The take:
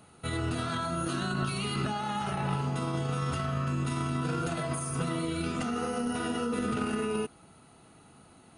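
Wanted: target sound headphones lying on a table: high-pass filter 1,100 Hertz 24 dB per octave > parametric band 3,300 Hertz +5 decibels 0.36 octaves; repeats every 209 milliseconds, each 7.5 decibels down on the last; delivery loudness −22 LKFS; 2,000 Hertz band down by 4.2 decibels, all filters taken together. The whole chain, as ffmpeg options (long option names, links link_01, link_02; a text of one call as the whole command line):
ffmpeg -i in.wav -af "highpass=frequency=1100:width=0.5412,highpass=frequency=1100:width=1.3066,equalizer=frequency=2000:width_type=o:gain=-6.5,equalizer=frequency=3300:width_type=o:width=0.36:gain=5,aecho=1:1:209|418|627|836|1045:0.422|0.177|0.0744|0.0312|0.0131,volume=16.5dB" out.wav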